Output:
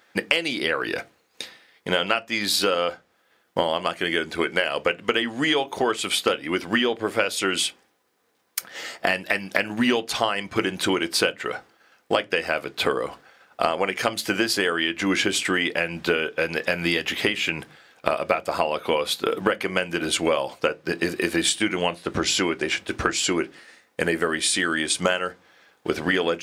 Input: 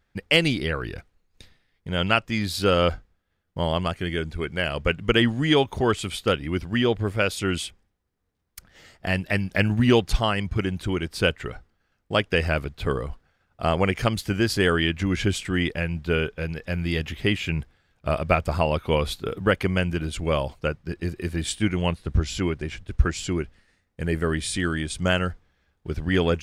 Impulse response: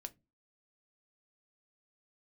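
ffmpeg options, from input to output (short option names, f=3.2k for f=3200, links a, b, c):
-filter_complex "[0:a]highpass=410,acompressor=threshold=-35dB:ratio=12,asplit=2[a][b];[1:a]atrim=start_sample=2205[c];[b][c]afir=irnorm=-1:irlink=0,volume=10.5dB[d];[a][d]amix=inputs=2:normalize=0,volume=7dB"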